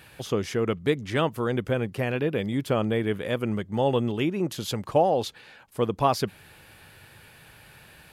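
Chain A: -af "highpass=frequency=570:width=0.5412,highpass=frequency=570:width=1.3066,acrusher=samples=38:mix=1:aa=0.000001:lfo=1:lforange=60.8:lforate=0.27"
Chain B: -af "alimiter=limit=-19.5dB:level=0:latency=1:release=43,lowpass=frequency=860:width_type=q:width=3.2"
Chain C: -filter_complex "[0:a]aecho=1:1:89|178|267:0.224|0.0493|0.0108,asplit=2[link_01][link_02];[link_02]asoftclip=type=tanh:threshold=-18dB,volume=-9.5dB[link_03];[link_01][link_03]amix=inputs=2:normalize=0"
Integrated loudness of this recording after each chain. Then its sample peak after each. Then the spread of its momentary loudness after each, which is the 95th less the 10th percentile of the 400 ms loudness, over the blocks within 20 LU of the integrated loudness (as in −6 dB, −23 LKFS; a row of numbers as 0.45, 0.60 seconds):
−32.5, −27.5, −24.5 LKFS; −9.5, −12.0, −7.0 dBFS; 15, 7, 6 LU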